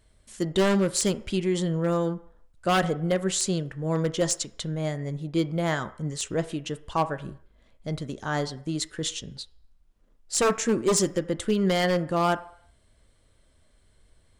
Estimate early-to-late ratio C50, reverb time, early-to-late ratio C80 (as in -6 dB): 17.0 dB, 0.60 s, 19.5 dB